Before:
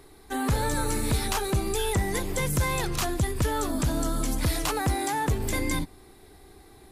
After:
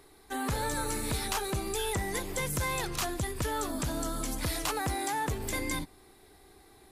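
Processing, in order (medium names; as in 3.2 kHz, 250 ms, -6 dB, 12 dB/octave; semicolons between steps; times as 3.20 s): bass shelf 320 Hz -6 dB; trim -3 dB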